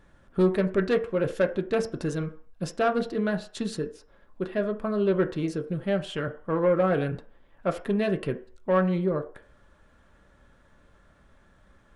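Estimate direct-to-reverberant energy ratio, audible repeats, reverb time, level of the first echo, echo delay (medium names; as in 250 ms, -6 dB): 4.0 dB, no echo, 0.50 s, no echo, no echo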